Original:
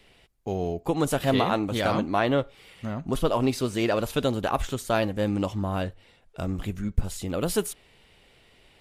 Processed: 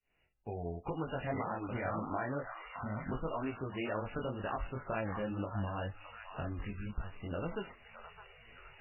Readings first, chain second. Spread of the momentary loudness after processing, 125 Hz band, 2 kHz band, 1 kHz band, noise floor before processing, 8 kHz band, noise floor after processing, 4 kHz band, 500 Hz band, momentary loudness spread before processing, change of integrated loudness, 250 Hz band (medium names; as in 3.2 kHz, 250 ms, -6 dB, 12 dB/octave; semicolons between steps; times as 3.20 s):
14 LU, -10.0 dB, -9.5 dB, -10.5 dB, -59 dBFS, under -40 dB, -72 dBFS, -19.0 dB, -13.0 dB, 11 LU, -12.5 dB, -13.0 dB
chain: fade-in on the opening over 1.17 s; peaking EQ 310 Hz -5.5 dB 2.6 oct; compression 3:1, threshold -39 dBFS, peak gain reduction 16.5 dB; chorus 2 Hz, delay 18 ms, depth 6.5 ms; on a send: repeats whose band climbs or falls 614 ms, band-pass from 1.1 kHz, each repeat 0.7 oct, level -5 dB; on the sum: careless resampling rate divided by 3×, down none, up hold; trim +5 dB; MP3 8 kbps 11.025 kHz